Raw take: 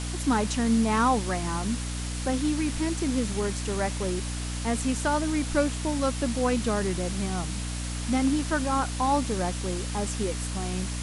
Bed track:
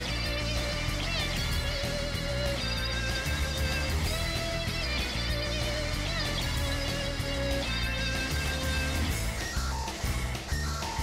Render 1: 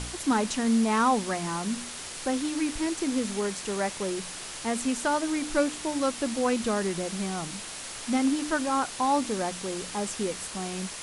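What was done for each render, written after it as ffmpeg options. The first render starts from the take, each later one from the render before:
-af "bandreject=f=60:t=h:w=4,bandreject=f=120:t=h:w=4,bandreject=f=180:t=h:w=4,bandreject=f=240:t=h:w=4,bandreject=f=300:t=h:w=4"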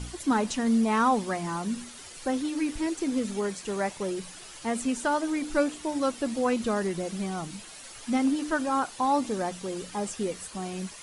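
-af "afftdn=nr=10:nf=-39"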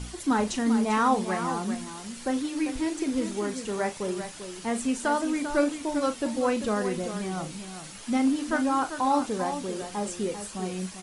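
-filter_complex "[0:a]asplit=2[s0][s1];[s1]adelay=38,volume=0.282[s2];[s0][s2]amix=inputs=2:normalize=0,aecho=1:1:394:0.335"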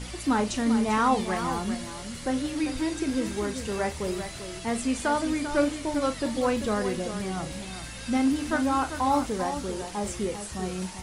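-filter_complex "[1:a]volume=0.282[s0];[0:a][s0]amix=inputs=2:normalize=0"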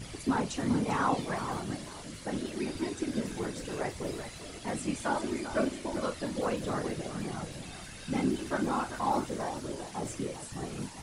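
-af "afftfilt=real='hypot(re,im)*cos(2*PI*random(0))':imag='hypot(re,im)*sin(2*PI*random(1))':win_size=512:overlap=0.75"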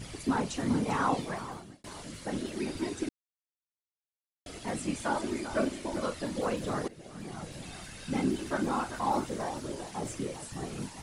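-filter_complex "[0:a]asplit=5[s0][s1][s2][s3][s4];[s0]atrim=end=1.84,asetpts=PTS-STARTPTS,afade=t=out:st=1.16:d=0.68[s5];[s1]atrim=start=1.84:end=3.09,asetpts=PTS-STARTPTS,afade=t=in:d=0.004:c=hsin,afade=t=out:st=1.246:d=0.004:c=hsin[s6];[s2]atrim=start=3.09:end=4.46,asetpts=PTS-STARTPTS,volume=0[s7];[s3]atrim=start=4.46:end=6.88,asetpts=PTS-STARTPTS,afade=t=in:d=0.004:c=hsin,afade=t=out:st=2.416:d=0.004:c=hsin:silence=0.11885[s8];[s4]atrim=start=6.88,asetpts=PTS-STARTPTS,afade=t=in:d=0.8:silence=0.11885[s9];[s5][s6][s7][s8][s9]concat=n=5:v=0:a=1"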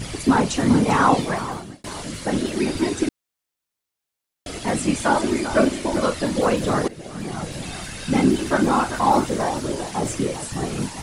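-af "volume=3.98"

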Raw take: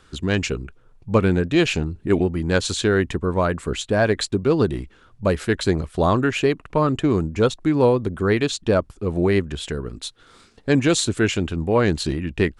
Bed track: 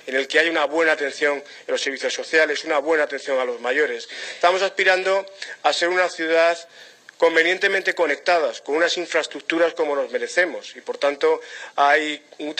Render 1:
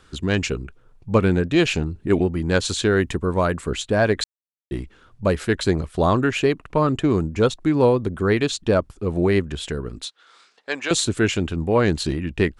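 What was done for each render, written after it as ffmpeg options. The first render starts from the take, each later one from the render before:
-filter_complex "[0:a]asettb=1/sr,asplit=3[s0][s1][s2];[s0]atrim=end=2.974[s3];[s1]atrim=start=2.97:end=3.61,asetpts=PTS-STARTPTS,afade=t=in:d=0.004:c=qsin,afade=t=out:st=0.636:d=0.004:c=qsin,highshelf=f=7200:g=7.5[s4];[s2]atrim=start=3.606[s5];[s3][s4]acrossfade=d=0.004:c1=hsin:c2=qsin[s6];[s6][s5]acrossfade=d=0.004:c1=qsin:c2=hsin,asettb=1/sr,asplit=3[s7][s8][s9];[s7]atrim=end=10.054[s10];[s8]atrim=start=10.05:end=10.91,asetpts=PTS-STARTPTS,afade=t=in:d=0.004:c=qsin,afade=t=out:st=0.856:d=0.004:c=qsin,highpass=760,lowpass=6700[s11];[s9]atrim=start=10.906[s12];[s10][s11]acrossfade=d=0.004:c1=hsin:c2=qsin[s13];[s13][s12]acrossfade=d=0.004:c1=qsin:c2=hsin,asplit=3[s14][s15][s16];[s14]atrim=end=4.24,asetpts=PTS-STARTPTS,afade=t=out:st=4.236:d=0.004:c=hsin[s17];[s15]atrim=start=4.24:end=4.71,asetpts=PTS-STARTPTS,volume=0[s18];[s16]atrim=start=4.71,asetpts=PTS-STARTPTS,afade=t=in:d=0.004:c=hsin[s19];[s17][s18][s19]concat=n=3:v=0:a=1"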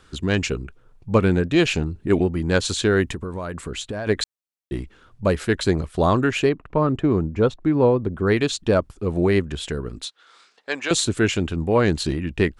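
-filter_complex "[0:a]asettb=1/sr,asplit=3[s0][s1][s2];[s0]atrim=end=3.144[s3];[s1]atrim=start=3.14:end=4.07,asetpts=PTS-STARTPTS,afade=t=in:d=0.004:c=qsin,afade=t=out:st=0.926:d=0.004:c=qsin,acompressor=threshold=0.0562:ratio=10:attack=3.2:release=140:knee=1:detection=peak[s4];[s2]atrim=start=4.066[s5];[s3][s4]acrossfade=d=0.004:c1=hsin:c2=qsin[s6];[s6][s5]acrossfade=d=0.004:c1=qsin:c2=hsin,asettb=1/sr,asplit=3[s7][s8][s9];[s7]atrim=end=6.494[s10];[s8]atrim=start=6.49:end=8.27,asetpts=PTS-STARTPTS,afade=t=in:d=0.004:c=qsin,afade=t=out:st=1.776:d=0.004:c=qsin,lowpass=f=1400:p=1[s11];[s9]atrim=start=8.266[s12];[s10][s11]acrossfade=d=0.004:c1=hsin:c2=qsin[s13];[s13][s12]acrossfade=d=0.004:c1=qsin:c2=hsin"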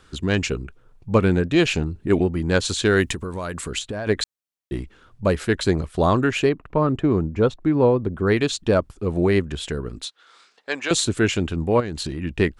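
-filter_complex "[0:a]asettb=1/sr,asplit=3[s0][s1][s2];[s0]atrim=end=2.854[s3];[s1]atrim=start=2.85:end=3.79,asetpts=PTS-STARTPTS,afade=t=in:d=0.004:c=qsin,afade=t=out:st=0.936:d=0.004:c=qsin,highshelf=f=2400:g=9[s4];[s2]atrim=start=3.786[s5];[s3][s4]acrossfade=d=0.004:c1=hsin:c2=qsin[s6];[s6][s5]acrossfade=d=0.004:c1=qsin:c2=hsin,asettb=1/sr,asplit=3[s7][s8][s9];[s7]atrim=end=11.804[s10];[s8]atrim=start=11.8:end=12.23,asetpts=PTS-STARTPTS,afade=t=in:d=0.004:c=qsin,afade=t=out:st=0.426:d=0.004:c=qsin,acompressor=threshold=0.0631:ratio=6:attack=3.2:release=140:knee=1:detection=peak[s11];[s9]atrim=start=12.226[s12];[s10][s11]acrossfade=d=0.004:c1=hsin:c2=qsin[s13];[s13][s12]acrossfade=d=0.004:c1=qsin:c2=hsin"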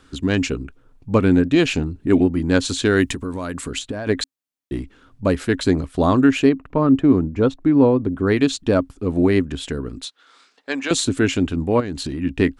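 -af "equalizer=f=270:t=o:w=0.21:g=13"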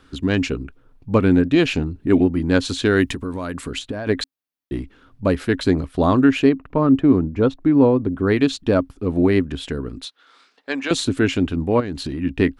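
-af "equalizer=f=7500:t=o:w=0.75:g=-7"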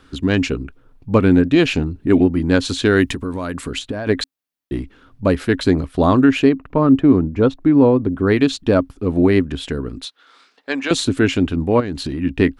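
-af "volume=1.33,alimiter=limit=0.708:level=0:latency=1"

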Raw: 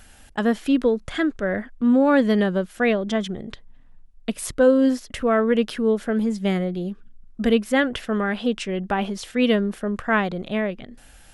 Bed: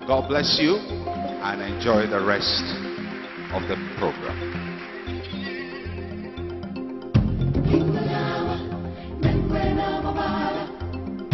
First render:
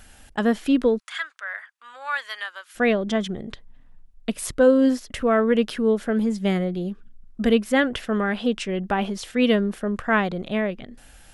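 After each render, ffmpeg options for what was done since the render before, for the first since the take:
-filter_complex "[0:a]asplit=3[s0][s1][s2];[s0]afade=t=out:st=0.98:d=0.02[s3];[s1]highpass=f=1100:w=0.5412,highpass=f=1100:w=1.3066,afade=t=in:st=0.98:d=0.02,afade=t=out:st=2.74:d=0.02[s4];[s2]afade=t=in:st=2.74:d=0.02[s5];[s3][s4][s5]amix=inputs=3:normalize=0"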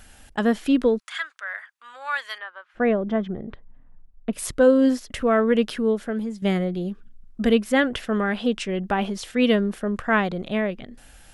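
-filter_complex "[0:a]asettb=1/sr,asplit=3[s0][s1][s2];[s0]atrim=end=2.384[s3];[s1]atrim=start=2.38:end=4.33,asetpts=PTS-STARTPTS,afade=t=in:d=0.004:c=qsin,afade=t=out:st=1.946:d=0.004:c=qsin,lowpass=1500[s4];[s2]atrim=start=4.326[s5];[s3][s4]acrossfade=d=0.004:c1=hsin:c2=qsin[s6];[s6][s5]acrossfade=d=0.004:c1=qsin:c2=hsin,asplit=2[s7][s8];[s7]atrim=end=6.42,asetpts=PTS-STARTPTS,afade=t=out:st=5.72:d=0.7:silence=0.334965[s9];[s8]atrim=start=6.42,asetpts=PTS-STARTPTS,afade=t=in:d=0.004:c=hsin:silence=0.334965[s10];[s9][s10]concat=n=2:v=0:a=1"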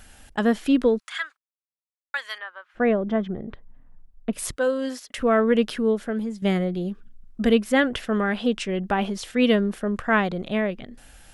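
-filter_complex "[0:a]asplit=3[s0][s1][s2];[s0]afade=t=out:st=4.54:d=0.02[s3];[s1]highpass=f=970:p=1,afade=t=in:st=4.54:d=0.02,afade=t=out:st=5.17:d=0.02[s4];[s2]afade=t=in:st=5.17:d=0.02[s5];[s3][s4][s5]amix=inputs=3:normalize=0,asplit=3[s6][s7][s8];[s6]atrim=end=1.37,asetpts=PTS-STARTPTS,afade=t=out:st=1.366:d=0.004:c=hsin[s9];[s7]atrim=start=1.37:end=2.14,asetpts=PTS-STARTPTS,volume=0[s10];[s8]atrim=start=2.14,asetpts=PTS-STARTPTS,afade=t=in:d=0.004:c=hsin[s11];[s9][s10][s11]concat=n=3:v=0:a=1"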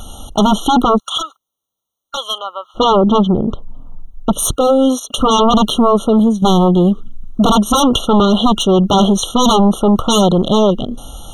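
-af "aeval=exprs='0.473*sin(PI/2*5.62*val(0)/0.473)':c=same,afftfilt=real='re*eq(mod(floor(b*sr/1024/1400),2),0)':imag='im*eq(mod(floor(b*sr/1024/1400),2),0)':win_size=1024:overlap=0.75"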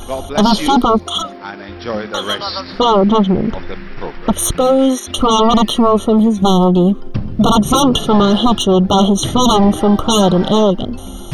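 -filter_complex "[1:a]volume=0.794[s0];[0:a][s0]amix=inputs=2:normalize=0"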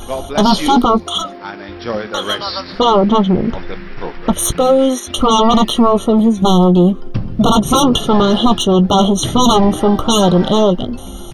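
-filter_complex "[0:a]asplit=2[s0][s1];[s1]adelay=17,volume=0.251[s2];[s0][s2]amix=inputs=2:normalize=0"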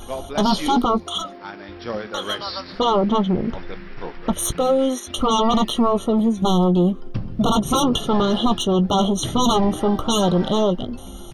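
-af "volume=0.447"

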